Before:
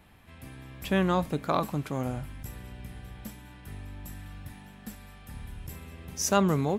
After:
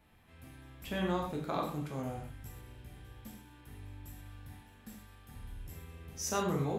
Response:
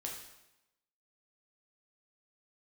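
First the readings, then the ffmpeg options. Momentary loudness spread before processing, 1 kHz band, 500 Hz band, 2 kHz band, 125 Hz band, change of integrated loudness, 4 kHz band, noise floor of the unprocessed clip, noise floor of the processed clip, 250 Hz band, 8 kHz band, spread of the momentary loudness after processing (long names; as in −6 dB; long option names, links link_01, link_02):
20 LU, −7.5 dB, −7.5 dB, −7.5 dB, −7.5 dB, −9.5 dB, −6.5 dB, −50 dBFS, −59 dBFS, −8.5 dB, −7.0 dB, 20 LU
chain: -filter_complex "[1:a]atrim=start_sample=2205,atrim=end_sample=6174[link_01];[0:a][link_01]afir=irnorm=-1:irlink=0,volume=-6dB"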